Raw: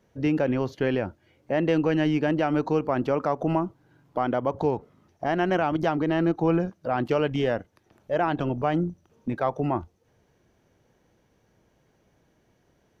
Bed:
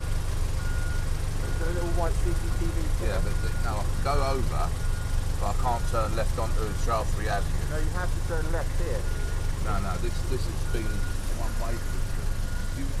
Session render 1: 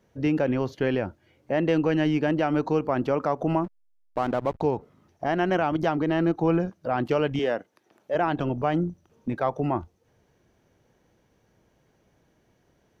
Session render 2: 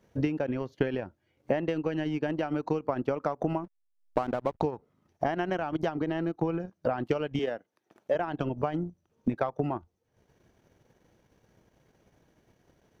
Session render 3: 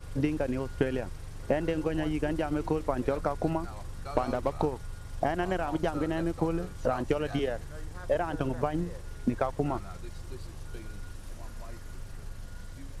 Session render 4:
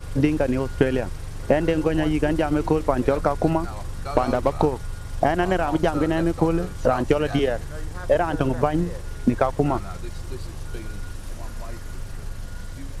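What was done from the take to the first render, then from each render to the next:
0:03.64–0:04.61: slack as between gear wheels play −29.5 dBFS; 0:07.39–0:08.15: high-pass filter 250 Hz
downward compressor 5 to 1, threshold −28 dBFS, peak gain reduction 10 dB; transient designer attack +6 dB, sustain −11 dB
mix in bed −13 dB
level +8.5 dB; brickwall limiter −3 dBFS, peak gain reduction 1.5 dB

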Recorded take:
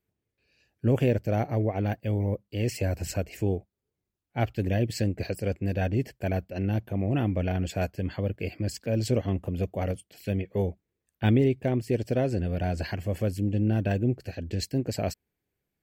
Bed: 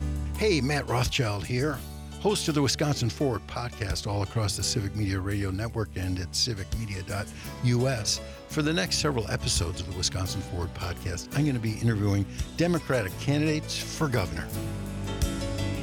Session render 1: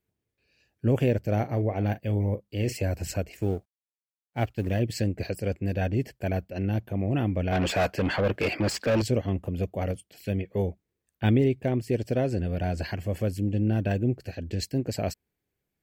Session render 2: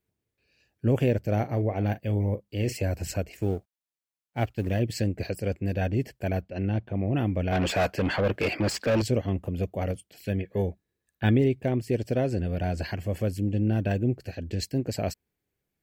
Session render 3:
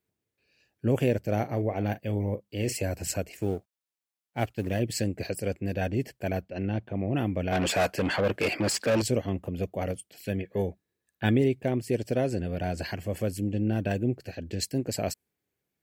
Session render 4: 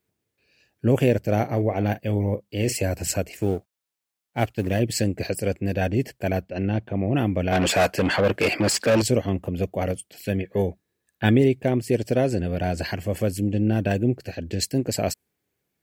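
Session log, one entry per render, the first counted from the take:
0:01.19–0:02.74: double-tracking delay 39 ms −13.5 dB; 0:03.32–0:04.80: mu-law and A-law mismatch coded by A; 0:07.52–0:09.02: mid-hump overdrive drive 26 dB, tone 2,400 Hz, clips at −15.5 dBFS
0:06.41–0:07.15: low-pass filter 5,300 Hz → 3,200 Hz; 0:10.28–0:11.35: hollow resonant body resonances 1,700/3,900 Hz, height 13 dB
high-pass filter 130 Hz 6 dB per octave; dynamic equaliser 9,800 Hz, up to +8 dB, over −56 dBFS, Q 0.87
level +5.5 dB

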